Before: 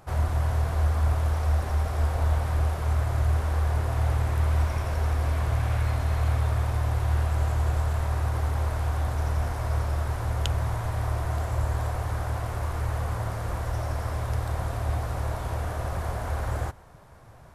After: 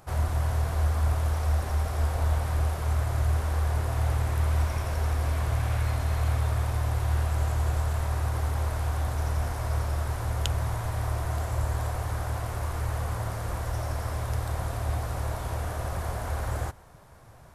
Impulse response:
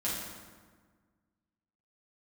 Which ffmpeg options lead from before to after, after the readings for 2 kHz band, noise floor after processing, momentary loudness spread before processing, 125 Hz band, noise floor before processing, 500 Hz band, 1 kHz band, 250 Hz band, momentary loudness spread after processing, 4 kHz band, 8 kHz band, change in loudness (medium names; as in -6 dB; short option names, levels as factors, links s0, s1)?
-1.0 dB, -48 dBFS, 5 LU, -1.5 dB, -46 dBFS, -1.5 dB, -1.5 dB, -1.5 dB, 5 LU, +0.5 dB, +2.5 dB, -1.5 dB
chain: -af "highshelf=f=4700:g=5.5,volume=0.841"